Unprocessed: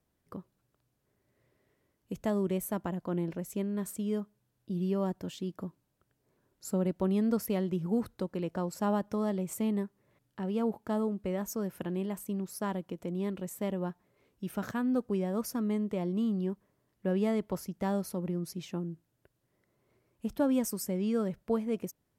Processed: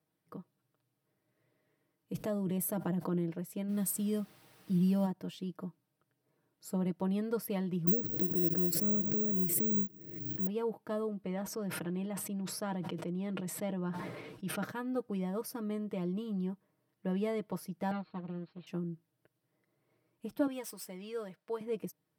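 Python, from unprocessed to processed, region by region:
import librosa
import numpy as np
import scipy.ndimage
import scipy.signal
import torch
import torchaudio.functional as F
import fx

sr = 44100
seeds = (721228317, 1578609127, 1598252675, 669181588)

y = fx.chain(x, sr, fx.peak_eq(hz=1800.0, db=-4.5, octaves=2.7),
    fx.env_flatten(amount_pct=70), at=(2.14, 3.18))
y = fx.bass_treble(y, sr, bass_db=8, treble_db=13, at=(3.68, 5.05), fade=0.02)
y = fx.dmg_noise_colour(y, sr, seeds[0], colour='pink', level_db=-57.0, at=(3.68, 5.05), fade=0.02)
y = fx.chain(y, sr, fx.curve_eq(hz=(140.0, 370.0, 830.0, 1800.0), db=(0, 6, -27, -12)),
    fx.resample_bad(factor=2, down='none', up='zero_stuff'),
    fx.pre_swell(db_per_s=46.0), at=(7.87, 10.47))
y = fx.chain(y, sr, fx.air_absorb(metres=51.0),
    fx.sustainer(db_per_s=29.0), at=(11.24, 14.64))
y = fx.chain(y, sr, fx.lower_of_two(delay_ms=0.75),
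    fx.cheby1_lowpass(hz=4400.0, order=6),
    fx.upward_expand(threshold_db=-49.0, expansion=1.5), at=(17.91, 18.67))
y = fx.chain(y, sr, fx.median_filter(points=3),
    fx.highpass(hz=720.0, slope=6), at=(20.47, 21.61))
y = scipy.signal.sosfilt(scipy.signal.butter(2, 110.0, 'highpass', fs=sr, output='sos'), y)
y = fx.peak_eq(y, sr, hz=6800.0, db=-9.5, octaves=0.28)
y = y + 0.67 * np.pad(y, (int(6.4 * sr / 1000.0), 0))[:len(y)]
y = F.gain(torch.from_numpy(y), -4.5).numpy()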